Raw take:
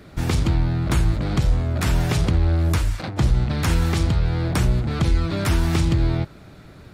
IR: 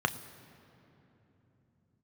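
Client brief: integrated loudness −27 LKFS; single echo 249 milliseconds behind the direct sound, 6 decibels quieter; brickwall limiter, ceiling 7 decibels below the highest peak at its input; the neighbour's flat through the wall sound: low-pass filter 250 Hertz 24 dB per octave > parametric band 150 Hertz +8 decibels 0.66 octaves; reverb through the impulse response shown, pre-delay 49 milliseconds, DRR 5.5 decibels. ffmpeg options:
-filter_complex "[0:a]alimiter=limit=-16dB:level=0:latency=1,aecho=1:1:249:0.501,asplit=2[link_01][link_02];[1:a]atrim=start_sample=2205,adelay=49[link_03];[link_02][link_03]afir=irnorm=-1:irlink=0,volume=-14.5dB[link_04];[link_01][link_04]amix=inputs=2:normalize=0,lowpass=frequency=250:width=0.5412,lowpass=frequency=250:width=1.3066,equalizer=frequency=150:width_type=o:width=0.66:gain=8,volume=-6dB"

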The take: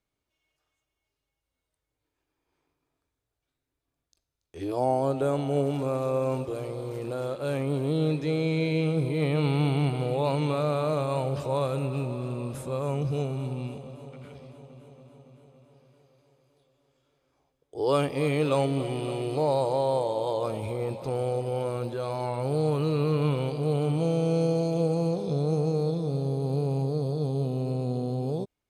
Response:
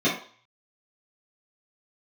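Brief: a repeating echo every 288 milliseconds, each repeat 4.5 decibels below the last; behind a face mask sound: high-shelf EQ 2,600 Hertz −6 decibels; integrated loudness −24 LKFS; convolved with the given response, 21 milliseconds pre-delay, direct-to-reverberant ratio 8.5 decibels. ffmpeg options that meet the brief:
-filter_complex "[0:a]aecho=1:1:288|576|864|1152|1440|1728|2016|2304|2592:0.596|0.357|0.214|0.129|0.0772|0.0463|0.0278|0.0167|0.01,asplit=2[link_01][link_02];[1:a]atrim=start_sample=2205,adelay=21[link_03];[link_02][link_03]afir=irnorm=-1:irlink=0,volume=-23.5dB[link_04];[link_01][link_04]amix=inputs=2:normalize=0,highshelf=frequency=2600:gain=-6,volume=0.5dB"

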